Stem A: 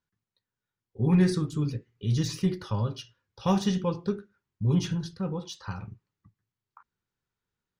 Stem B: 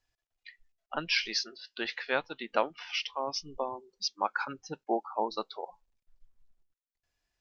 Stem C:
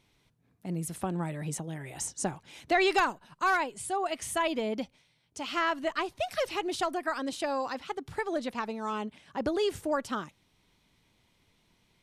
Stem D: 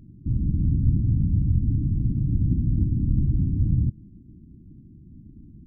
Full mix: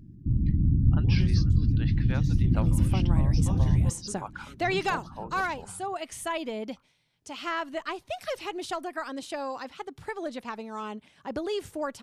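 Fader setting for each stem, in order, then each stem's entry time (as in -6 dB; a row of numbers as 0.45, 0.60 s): -14.0, -9.0, -2.5, -1.0 dB; 0.00, 0.00, 1.90, 0.00 s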